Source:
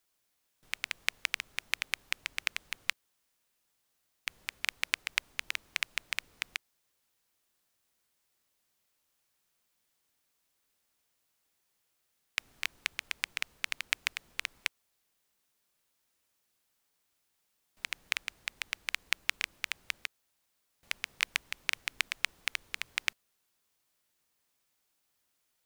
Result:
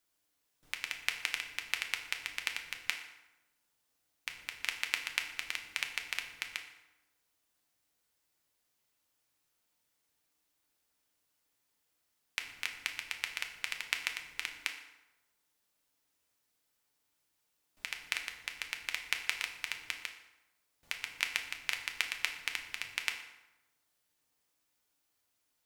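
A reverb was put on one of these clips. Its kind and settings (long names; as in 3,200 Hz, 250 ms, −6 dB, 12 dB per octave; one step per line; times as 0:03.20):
feedback delay network reverb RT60 1 s, low-frequency decay 1.05×, high-frequency decay 0.7×, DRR 3.5 dB
level −3 dB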